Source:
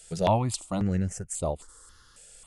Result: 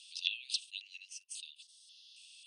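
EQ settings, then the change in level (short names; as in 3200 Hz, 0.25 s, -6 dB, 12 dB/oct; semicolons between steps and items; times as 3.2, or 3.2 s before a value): polynomial smoothing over 15 samples; rippled Chebyshev high-pass 2600 Hz, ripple 3 dB; air absorption 55 m; +9.5 dB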